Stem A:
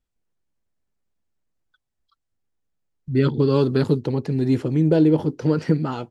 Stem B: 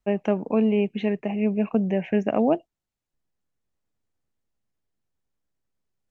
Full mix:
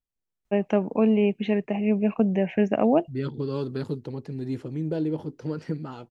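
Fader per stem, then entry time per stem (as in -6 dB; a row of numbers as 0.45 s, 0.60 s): -11.0 dB, +0.5 dB; 0.00 s, 0.45 s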